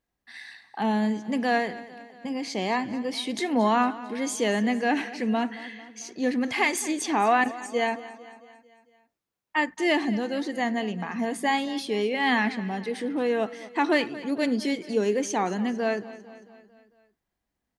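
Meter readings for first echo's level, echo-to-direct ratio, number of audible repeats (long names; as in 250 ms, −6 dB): −17.0 dB, −15.5 dB, 4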